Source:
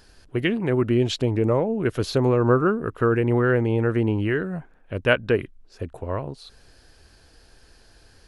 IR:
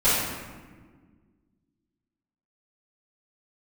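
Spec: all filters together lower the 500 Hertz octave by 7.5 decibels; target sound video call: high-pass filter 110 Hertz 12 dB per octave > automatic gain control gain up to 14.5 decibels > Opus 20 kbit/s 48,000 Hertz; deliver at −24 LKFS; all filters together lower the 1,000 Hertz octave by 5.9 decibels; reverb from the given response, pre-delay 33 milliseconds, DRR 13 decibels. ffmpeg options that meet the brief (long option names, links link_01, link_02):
-filter_complex "[0:a]equalizer=frequency=500:width_type=o:gain=-9,equalizer=frequency=1000:width_type=o:gain=-6,asplit=2[link_01][link_02];[1:a]atrim=start_sample=2205,adelay=33[link_03];[link_02][link_03]afir=irnorm=-1:irlink=0,volume=-30.5dB[link_04];[link_01][link_04]amix=inputs=2:normalize=0,highpass=110,dynaudnorm=maxgain=14.5dB,volume=3dB" -ar 48000 -c:a libopus -b:a 20k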